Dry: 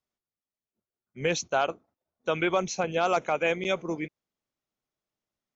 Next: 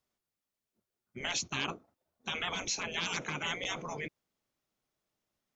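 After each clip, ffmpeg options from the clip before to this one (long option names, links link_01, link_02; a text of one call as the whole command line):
ffmpeg -i in.wav -af "afftfilt=real='re*lt(hypot(re,im),0.0708)':imag='im*lt(hypot(re,im),0.0708)':win_size=1024:overlap=0.75,volume=4dB" out.wav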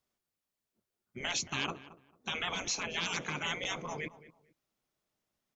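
ffmpeg -i in.wav -filter_complex "[0:a]asplit=2[link_01][link_02];[link_02]adelay=223,lowpass=frequency=1700:poles=1,volume=-15.5dB,asplit=2[link_03][link_04];[link_04]adelay=223,lowpass=frequency=1700:poles=1,volume=0.24[link_05];[link_01][link_03][link_05]amix=inputs=3:normalize=0" out.wav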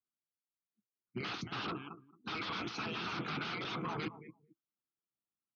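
ffmpeg -i in.wav -af "aeval=exprs='0.0141*(abs(mod(val(0)/0.0141+3,4)-2)-1)':channel_layout=same,highpass=100,equalizer=frequency=120:width_type=q:width=4:gain=8,equalizer=frequency=200:width_type=q:width=4:gain=5,equalizer=frequency=320:width_type=q:width=4:gain=7,equalizer=frequency=570:width_type=q:width=4:gain=-10,equalizer=frequency=1300:width_type=q:width=4:gain=9,equalizer=frequency=1800:width_type=q:width=4:gain=-5,lowpass=frequency=4700:width=0.5412,lowpass=frequency=4700:width=1.3066,afftdn=noise_reduction=22:noise_floor=-57,volume=3dB" out.wav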